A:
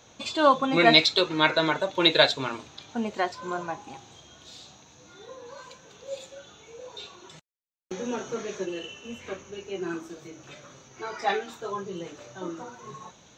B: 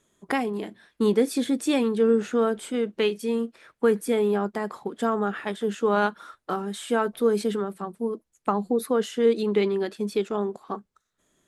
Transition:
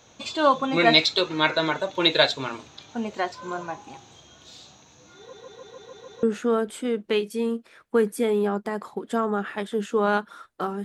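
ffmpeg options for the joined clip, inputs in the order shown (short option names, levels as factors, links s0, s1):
-filter_complex "[0:a]apad=whole_dur=10.84,atrim=end=10.84,asplit=7[s0][s1][s2][s3][s4][s5][s6];[s0]atrim=end=5.332[s7];[s1]atrim=start=5.178:end=5.332[s8];[s2]atrim=start=5.178:end=5.332[s9];[s3]atrim=start=5.178:end=5.332[s10];[s4]atrim=start=5.178:end=5.332[s11];[s5]atrim=start=5.178:end=5.332[s12];[s6]atrim=start=5.178:end=5.332[s13];[1:a]atrim=start=2.118:end=6.73[s14];[s7][s8]acrossfade=d=0.004:c1=hsin:c2=hsin[s15];[s15][s9]acrossfade=d=0.004:c1=hsin:c2=hsin[s16];[s16][s10]acrossfade=d=0.004:c1=hsin:c2=hsin[s17];[s17][s11]acrossfade=d=0.004:c1=hsin:c2=hsin[s18];[s18][s12]acrossfade=d=0.004:c1=hsin:c2=hsin[s19];[s19][s13]acrossfade=d=0.004:c1=hsin:c2=hsin[s20];[s20][s14]acrossfade=d=0.004:c1=hsin:c2=hsin"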